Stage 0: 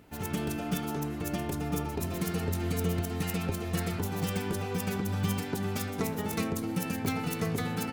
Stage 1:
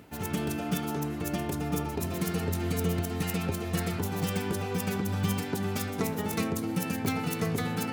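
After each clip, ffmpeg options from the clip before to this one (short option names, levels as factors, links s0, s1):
-af "highpass=66,areverse,acompressor=mode=upward:threshold=0.02:ratio=2.5,areverse,volume=1.19"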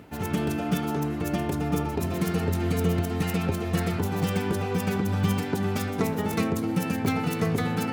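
-af "highshelf=f=3900:g=-7,volume=1.68"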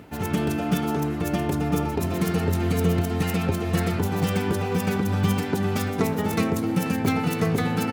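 -af "aecho=1:1:484:0.133,volume=1.33"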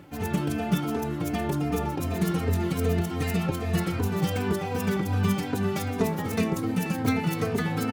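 -filter_complex "[0:a]asplit=2[s0][s1];[s1]adelay=3.1,afreqshift=-2.6[s2];[s0][s2]amix=inputs=2:normalize=1"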